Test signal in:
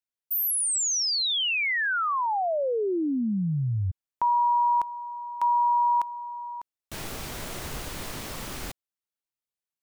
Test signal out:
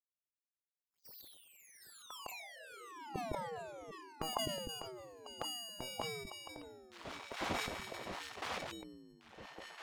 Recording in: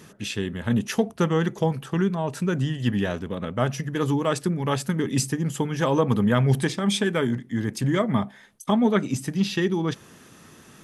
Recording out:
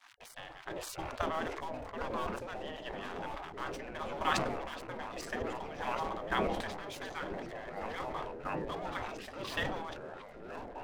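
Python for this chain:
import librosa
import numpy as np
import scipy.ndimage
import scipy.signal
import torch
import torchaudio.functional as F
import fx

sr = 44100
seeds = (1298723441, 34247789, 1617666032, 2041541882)

y = fx.rider(x, sr, range_db=3, speed_s=2.0)
y = scipy.signal.sosfilt(scipy.signal.butter(2, 3600.0, 'lowpass', fs=sr, output='sos'), y)
y = fx.comb_fb(y, sr, f0_hz=160.0, decay_s=0.2, harmonics='all', damping=0.0, mix_pct=60)
y = fx.chopper(y, sr, hz=0.95, depth_pct=65, duty_pct=15)
y = fx.low_shelf(y, sr, hz=91.0, db=5.0)
y = fx.notch(y, sr, hz=880.0, q=12.0)
y = np.sign(y) * np.maximum(np.abs(y) - 10.0 ** (-48.5 / 20.0), 0.0)
y = fx.curve_eq(y, sr, hz=(120.0, 530.0, 1400.0), db=(0, 4, -9))
y = fx.spec_gate(y, sr, threshold_db=-20, keep='weak')
y = fx.echo_pitch(y, sr, ms=494, semitones=-4, count=3, db_per_echo=-6.0)
y = fx.sustainer(y, sr, db_per_s=36.0)
y = F.gain(torch.from_numpy(y), 12.5).numpy()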